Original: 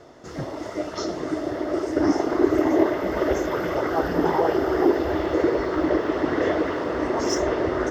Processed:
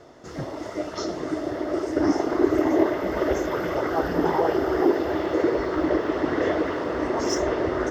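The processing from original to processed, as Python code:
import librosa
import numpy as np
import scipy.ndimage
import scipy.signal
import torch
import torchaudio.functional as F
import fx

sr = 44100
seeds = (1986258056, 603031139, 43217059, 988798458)

y = fx.highpass(x, sr, hz=97.0, slope=12, at=(4.81, 5.51))
y = y * 10.0 ** (-1.0 / 20.0)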